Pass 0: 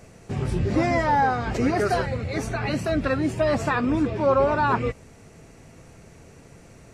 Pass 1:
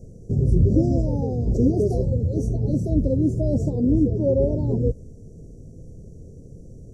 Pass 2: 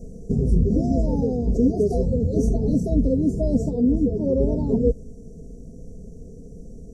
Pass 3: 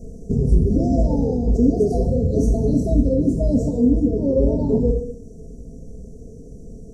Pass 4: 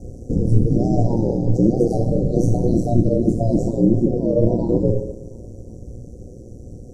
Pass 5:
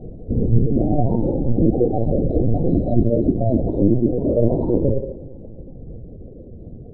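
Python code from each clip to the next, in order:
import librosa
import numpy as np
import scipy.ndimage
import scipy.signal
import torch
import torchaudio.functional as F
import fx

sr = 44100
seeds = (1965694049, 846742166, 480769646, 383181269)

y1 = scipy.signal.sosfilt(scipy.signal.ellip(3, 1.0, 50, [510.0, 5900.0], 'bandstop', fs=sr, output='sos'), x)
y1 = fx.tilt_eq(y1, sr, slope=-2.5)
y2 = y1 + 0.7 * np.pad(y1, (int(4.4 * sr / 1000.0), 0))[:len(y1)]
y2 = fx.rider(y2, sr, range_db=4, speed_s=0.5)
y3 = fx.rev_gated(y2, sr, seeds[0], gate_ms=300, shape='falling', drr_db=3.5)
y3 = F.gain(torch.from_numpy(y3), 1.0).numpy()
y4 = y3 * np.sin(2.0 * np.pi * 59.0 * np.arange(len(y3)) / sr)
y4 = fx.echo_feedback(y4, sr, ms=356, feedback_pct=44, wet_db=-21.5)
y4 = F.gain(torch.from_numpy(y4), 3.5).numpy()
y5 = fx.air_absorb(y4, sr, metres=72.0)
y5 = fx.lpc_vocoder(y5, sr, seeds[1], excitation='pitch_kept', order=16)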